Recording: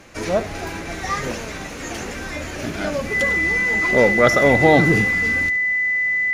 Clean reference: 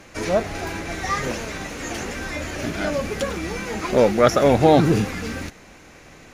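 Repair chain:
notch filter 2,000 Hz, Q 30
echo removal 72 ms −16.5 dB

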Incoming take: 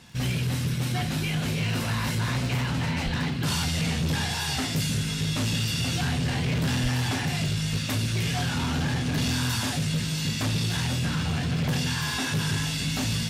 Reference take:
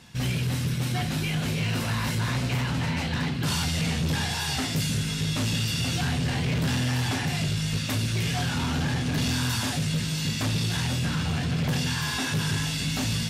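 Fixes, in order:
click removal
0:03.04–0:03.16: high-pass filter 140 Hz 24 dB per octave
0:06.82–0:06.94: high-pass filter 140 Hz 24 dB per octave

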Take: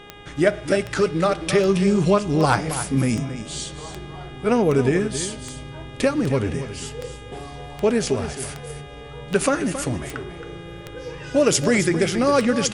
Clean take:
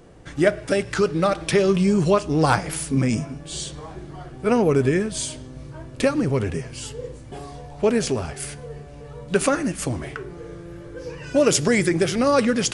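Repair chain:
click removal
hum removal 409.4 Hz, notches 9
echo removal 271 ms −11 dB

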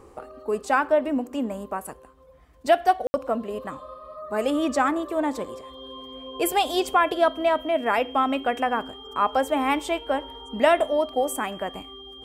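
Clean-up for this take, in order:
notch filter 3,200 Hz, Q 30
ambience match 0:03.07–0:03.14

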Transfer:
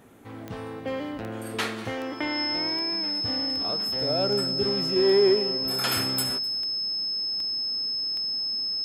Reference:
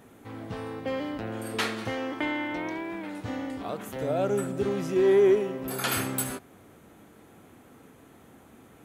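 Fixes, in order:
click removal
notch filter 5,200 Hz, Q 30
echo removal 254 ms −21.5 dB

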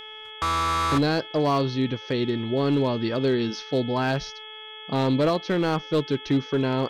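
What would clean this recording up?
clipped peaks rebuilt −16 dBFS
hum removal 432.9 Hz, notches 8
notch filter 3,300 Hz, Q 30

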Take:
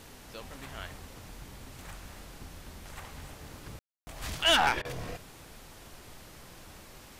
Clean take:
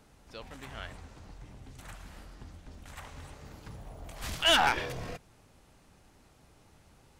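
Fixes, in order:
ambience match 0:03.79–0:04.07
repair the gap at 0:04.82, 28 ms
noise reduction from a noise print 10 dB

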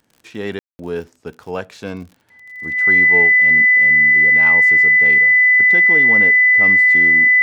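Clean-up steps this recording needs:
click removal
notch filter 2,000 Hz, Q 30
ambience match 0:00.59–0:00.79

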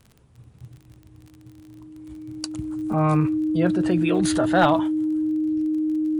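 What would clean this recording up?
clipped peaks rebuilt −9 dBFS
click removal
notch filter 310 Hz, Q 30

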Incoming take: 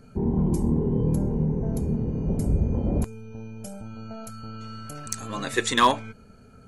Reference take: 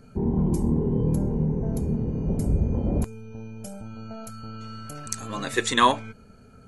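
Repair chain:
clipped peaks rebuilt −10 dBFS

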